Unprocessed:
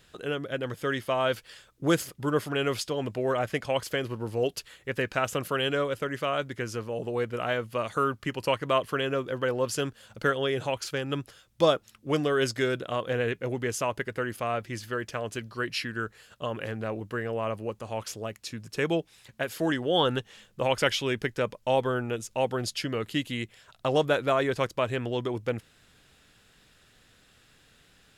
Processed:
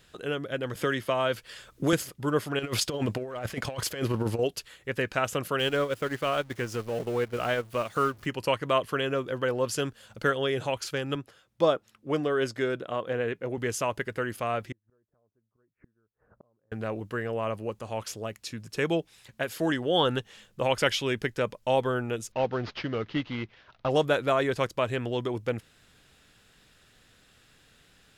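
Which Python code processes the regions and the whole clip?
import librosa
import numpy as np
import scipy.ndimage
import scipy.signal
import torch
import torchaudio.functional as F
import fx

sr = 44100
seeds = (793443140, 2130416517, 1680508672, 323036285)

y = fx.chain(x, sr, fx.notch(hz=810.0, q=14.0),
    fx.band_squash(depth_pct=70), at=(0.75, 1.93))
y = fx.chain(y, sr, fx.leveller(passes=1),
    fx.over_compress(threshold_db=-29.0, ratio=-0.5), at=(2.59, 4.39))
y = fx.chain(y, sr, fx.zero_step(step_db=-36.5),
    fx.transient(attack_db=-1, sustain_db=-12), at=(5.59, 8.26))
y = fx.chain(y, sr, fx.highpass(hz=170.0, slope=6),
    fx.high_shelf(hz=2600.0, db=-9.5), at=(11.15, 13.58))
y = fx.chain(y, sr, fx.gaussian_blur(sigma=7.7),
    fx.gate_flip(shuts_db=-39.0, range_db=-37), at=(14.72, 16.72))
y = fx.chain(y, sr, fx.cvsd(bps=32000),
    fx.lowpass(hz=3200.0, slope=12), at=(22.32, 23.9))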